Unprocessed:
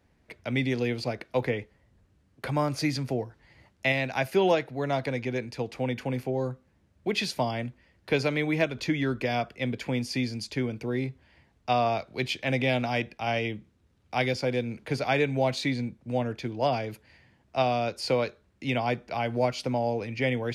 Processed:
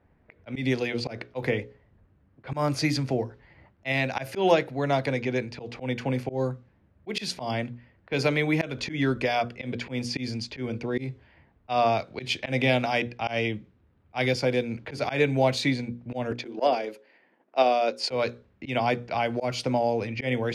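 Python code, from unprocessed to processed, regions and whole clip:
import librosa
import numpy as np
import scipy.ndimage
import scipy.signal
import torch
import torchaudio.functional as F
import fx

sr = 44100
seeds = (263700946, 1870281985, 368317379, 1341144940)

y = fx.chain(x, sr, fx.highpass(hz=250.0, slope=24),
    fx.peak_eq(hz=480.0, db=3.0, octaves=1.1),
    fx.transient(attack_db=7, sustain_db=-5), at=(16.31, 18.11))
y = fx.hum_notches(y, sr, base_hz=60, count=9)
y = fx.env_lowpass(y, sr, base_hz=1700.0, full_db=-24.5)
y = fx.auto_swell(y, sr, attack_ms=121.0)
y = y * librosa.db_to_amplitude(3.5)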